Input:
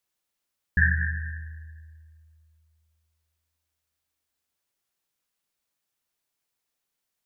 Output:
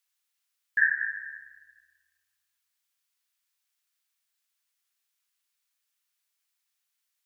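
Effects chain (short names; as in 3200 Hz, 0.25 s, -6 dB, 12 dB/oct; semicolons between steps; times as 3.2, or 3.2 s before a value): HPF 1400 Hz 12 dB/oct; gain +2 dB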